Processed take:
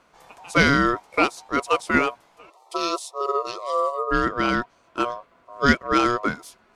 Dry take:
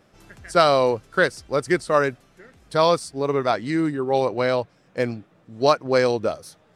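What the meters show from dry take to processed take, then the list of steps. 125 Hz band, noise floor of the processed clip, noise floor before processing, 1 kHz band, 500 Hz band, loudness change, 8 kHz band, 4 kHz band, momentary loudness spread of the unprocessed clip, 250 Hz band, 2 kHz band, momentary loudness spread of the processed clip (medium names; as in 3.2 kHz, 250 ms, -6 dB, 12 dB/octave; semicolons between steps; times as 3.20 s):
-1.5 dB, -60 dBFS, -59 dBFS, +0.5 dB, -6.5 dB, -1.0 dB, +0.5 dB, -0.5 dB, 9 LU, +1.5 dB, +4.0 dB, 9 LU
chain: time-frequency box 2.50–4.11 s, 510–2600 Hz -30 dB; ring modulator 840 Hz; trim +2 dB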